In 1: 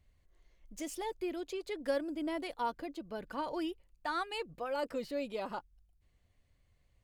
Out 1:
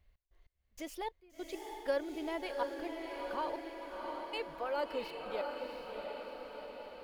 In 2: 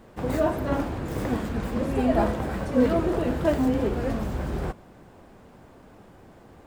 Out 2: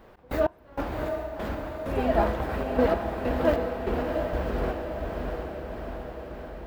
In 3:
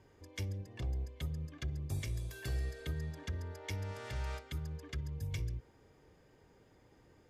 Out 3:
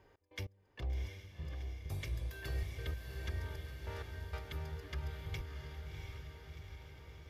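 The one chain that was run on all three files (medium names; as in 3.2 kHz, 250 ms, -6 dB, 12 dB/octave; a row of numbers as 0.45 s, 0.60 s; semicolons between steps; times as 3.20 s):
ten-band graphic EQ 125 Hz -7 dB, 250 Hz -6 dB, 8 kHz -11 dB; trance gate "x.x..xx..x..xxxx" 97 bpm -24 dB; echo that smears into a reverb 707 ms, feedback 64%, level -4 dB; trim +1 dB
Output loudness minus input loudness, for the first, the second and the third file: -2.0 LU, -3.0 LU, -3.0 LU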